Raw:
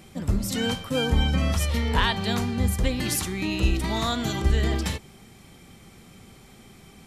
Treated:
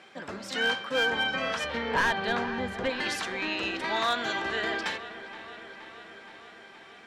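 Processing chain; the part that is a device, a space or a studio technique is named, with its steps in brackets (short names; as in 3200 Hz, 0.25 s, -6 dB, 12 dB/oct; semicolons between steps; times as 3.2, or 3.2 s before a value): megaphone (BPF 530–3700 Hz; bell 1600 Hz +9 dB 0.21 oct; hard clip -21.5 dBFS, distortion -12 dB); 1.64–2.9 tilt -2.5 dB/oct; dark delay 0.472 s, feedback 70%, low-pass 3400 Hz, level -14 dB; gain +2 dB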